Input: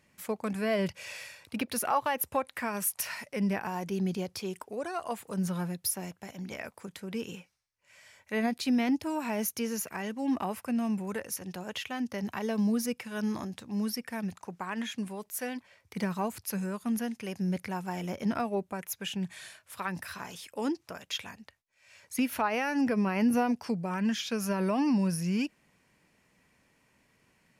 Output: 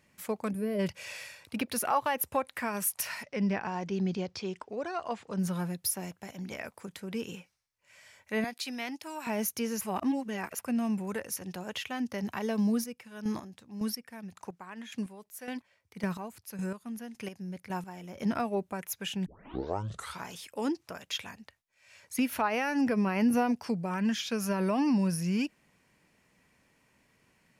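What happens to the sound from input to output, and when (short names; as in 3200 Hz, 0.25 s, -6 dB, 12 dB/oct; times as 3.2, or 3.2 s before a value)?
0.5–0.79 spectral gain 620–8900 Hz -14 dB
3.23–5.39 LPF 6100 Hz 24 dB/oct
8.44–9.27 HPF 1200 Hz 6 dB/oct
9.81–10.59 reverse
12.7–18.16 chopper 1.8 Hz, depth 65%, duty 25%
19.26 tape start 0.99 s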